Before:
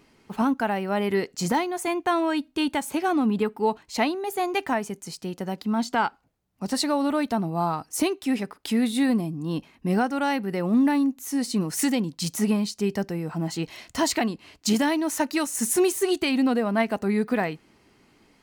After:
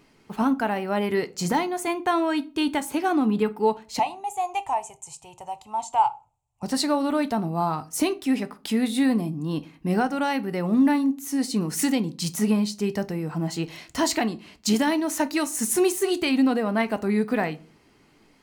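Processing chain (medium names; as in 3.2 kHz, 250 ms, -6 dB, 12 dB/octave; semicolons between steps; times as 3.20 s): 3.99–6.63 s: FFT filter 130 Hz 0 dB, 190 Hz -27 dB, 510 Hz -12 dB, 880 Hz +7 dB, 1.6 kHz -21 dB, 2.6 kHz -3 dB, 4.7 kHz -15 dB, 7.5 kHz +6 dB, 15 kHz -19 dB; simulated room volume 210 m³, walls furnished, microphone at 0.38 m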